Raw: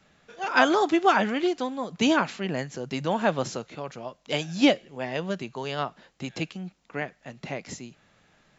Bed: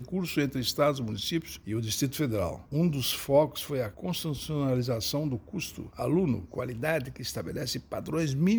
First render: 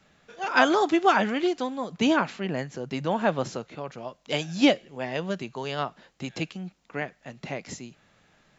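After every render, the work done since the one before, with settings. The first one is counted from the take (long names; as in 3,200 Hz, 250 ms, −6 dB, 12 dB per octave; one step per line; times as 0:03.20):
0:01.97–0:03.98: high-shelf EQ 3,900 Hz −6 dB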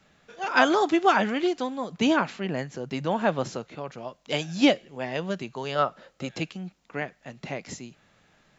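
0:05.75–0:06.31: hollow resonant body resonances 550/1,300 Hz, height 11 dB, ringing for 25 ms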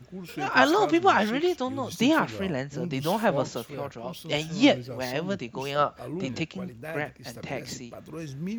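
mix in bed −8.5 dB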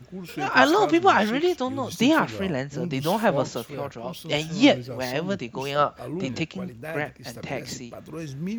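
level +2.5 dB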